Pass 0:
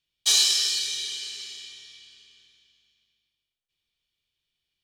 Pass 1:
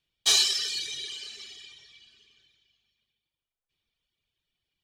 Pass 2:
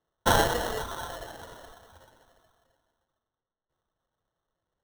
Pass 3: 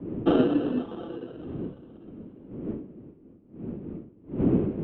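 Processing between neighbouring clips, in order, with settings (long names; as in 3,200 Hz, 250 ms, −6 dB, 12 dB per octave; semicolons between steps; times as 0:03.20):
reverb reduction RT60 1.3 s; high-shelf EQ 2,800 Hz −9.5 dB; level +6 dB
sample-rate reduction 2,400 Hz, jitter 0%
wind on the microphone 300 Hz −32 dBFS; octave-band graphic EQ 500/1,000/2,000 Hz +12/−9/−10 dB; single-sideband voice off tune −190 Hz 330–3,000 Hz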